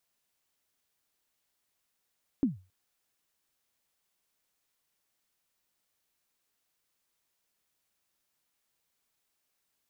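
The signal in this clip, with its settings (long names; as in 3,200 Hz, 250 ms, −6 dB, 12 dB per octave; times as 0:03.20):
synth kick length 0.27 s, from 300 Hz, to 93 Hz, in 145 ms, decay 0.31 s, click off, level −19 dB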